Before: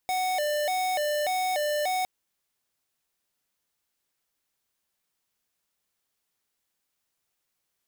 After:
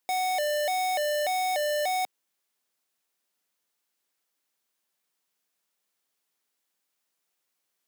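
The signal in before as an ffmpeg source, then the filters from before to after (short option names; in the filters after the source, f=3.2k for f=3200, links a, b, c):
-f lavfi -i "aevalsrc='0.0447*(2*lt(mod((668.5*t+73.5/1.7*(0.5-abs(mod(1.7*t,1)-0.5))),1),0.5)-1)':d=1.96:s=44100"
-af "highpass=200"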